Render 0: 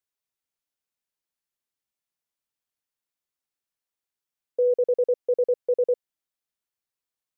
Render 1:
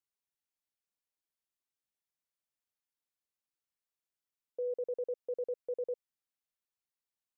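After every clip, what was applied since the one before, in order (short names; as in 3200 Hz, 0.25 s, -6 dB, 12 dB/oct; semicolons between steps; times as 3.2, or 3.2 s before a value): limiter -24.5 dBFS, peak gain reduction 7.5 dB; gain -6.5 dB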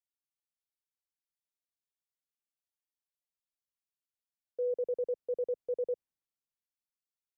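tilt shelf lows +5.5 dB; three-band expander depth 40%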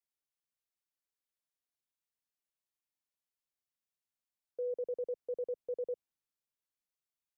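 limiter -30.5 dBFS, peak gain reduction 3 dB; gain -1.5 dB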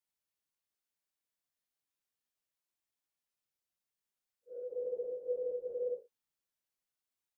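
phase scrambler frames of 0.2 s; gain +1 dB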